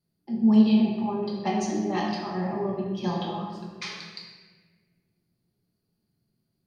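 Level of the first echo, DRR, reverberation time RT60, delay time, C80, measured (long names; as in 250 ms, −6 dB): no echo audible, −3.5 dB, 1.5 s, no echo audible, 3.0 dB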